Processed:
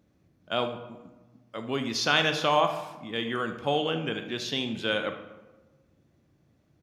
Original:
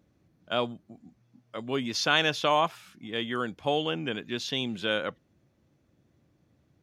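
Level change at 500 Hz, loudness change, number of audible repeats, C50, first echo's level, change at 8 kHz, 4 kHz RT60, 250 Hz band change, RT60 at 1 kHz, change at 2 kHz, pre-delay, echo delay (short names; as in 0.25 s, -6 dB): +1.0 dB, +0.5 dB, 1, 8.5 dB, -15.0 dB, +0.5 dB, 0.65 s, +0.5 dB, 1.1 s, +0.5 dB, 16 ms, 75 ms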